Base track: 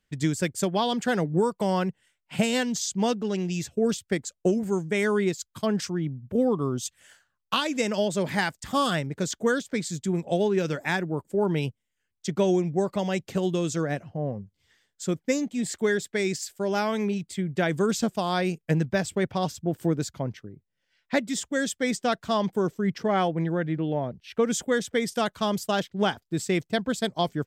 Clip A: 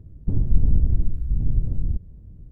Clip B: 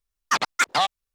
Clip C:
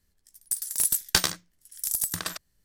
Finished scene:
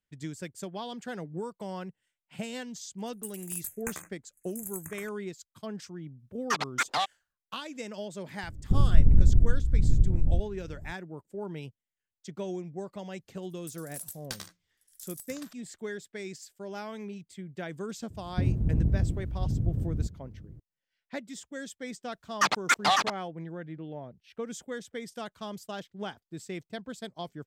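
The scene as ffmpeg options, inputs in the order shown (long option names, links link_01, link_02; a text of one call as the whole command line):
ffmpeg -i bed.wav -i cue0.wav -i cue1.wav -i cue2.wav -filter_complex "[3:a]asplit=2[link_01][link_02];[2:a]asplit=2[link_03][link_04];[1:a]asplit=2[link_05][link_06];[0:a]volume=-13dB[link_07];[link_01]asuperstop=centerf=4100:order=20:qfactor=1.1[link_08];[link_06]highpass=77[link_09];[link_04]aecho=1:1:551:0.708[link_10];[link_08]atrim=end=2.64,asetpts=PTS-STARTPTS,volume=-13dB,afade=type=in:duration=0.004:curve=hsin,afade=type=out:start_time=2.636:duration=0.004:curve=hsin,adelay=2720[link_11];[link_03]atrim=end=1.14,asetpts=PTS-STARTPTS,volume=-7dB,afade=type=in:duration=0.004:curve=hsin,afade=type=out:start_time=1.136:duration=0.004:curve=hsin,adelay=6190[link_12];[link_05]atrim=end=2.5,asetpts=PTS-STARTPTS,volume=-0.5dB,afade=type=in:duration=0.004:curve=hsin,afade=type=out:start_time=2.496:duration=0.004:curve=hsin,adelay=8430[link_13];[link_02]atrim=end=2.64,asetpts=PTS-STARTPTS,volume=-17.5dB,afade=type=in:duration=0.004:curve=hsin,afade=type=out:start_time=2.636:duration=0.004:curve=hsin,adelay=580356S[link_14];[link_09]atrim=end=2.5,asetpts=PTS-STARTPTS,afade=type=in:duration=0.004:curve=hsin,afade=type=out:start_time=2.496:duration=0.004:curve=hsin,adelay=18100[link_15];[link_10]atrim=end=1.14,asetpts=PTS-STARTPTS,volume=-2.5dB,afade=type=in:duration=0.004:curve=hsin,afade=type=out:start_time=1.136:duration=0.004:curve=hsin,adelay=22100[link_16];[link_07][link_11][link_12][link_13][link_14][link_15][link_16]amix=inputs=7:normalize=0" out.wav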